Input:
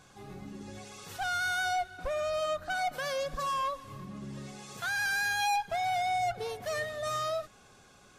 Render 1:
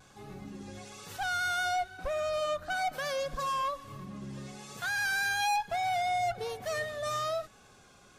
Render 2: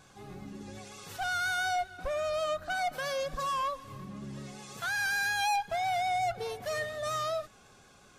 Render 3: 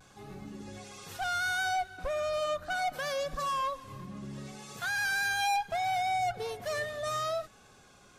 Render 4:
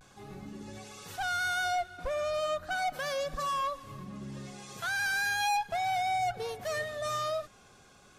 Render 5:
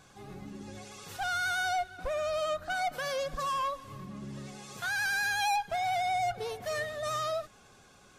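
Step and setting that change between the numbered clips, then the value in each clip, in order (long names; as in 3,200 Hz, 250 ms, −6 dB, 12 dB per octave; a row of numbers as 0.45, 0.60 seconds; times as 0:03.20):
pitch vibrato, speed: 1.1, 5.5, 0.7, 0.37, 11 Hertz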